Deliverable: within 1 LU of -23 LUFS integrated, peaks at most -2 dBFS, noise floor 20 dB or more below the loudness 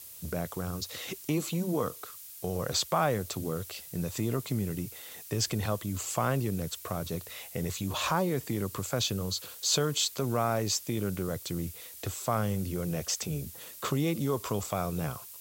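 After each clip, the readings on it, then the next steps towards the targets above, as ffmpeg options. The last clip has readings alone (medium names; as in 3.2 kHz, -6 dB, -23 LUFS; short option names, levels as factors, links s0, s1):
noise floor -47 dBFS; noise floor target -52 dBFS; loudness -32.0 LUFS; peak level -13.5 dBFS; loudness target -23.0 LUFS
-> -af "afftdn=nr=6:nf=-47"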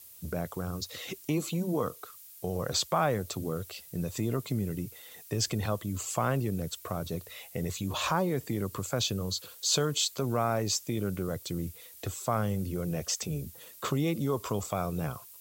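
noise floor -51 dBFS; noise floor target -52 dBFS
-> -af "afftdn=nr=6:nf=-51"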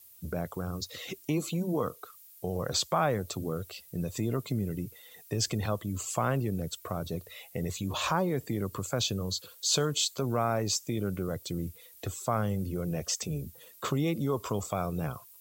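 noise floor -55 dBFS; loudness -32.0 LUFS; peak level -14.0 dBFS; loudness target -23.0 LUFS
-> -af "volume=2.82"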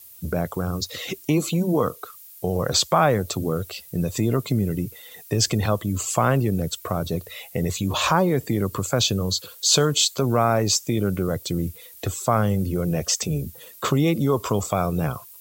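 loudness -23.0 LUFS; peak level -5.0 dBFS; noise floor -46 dBFS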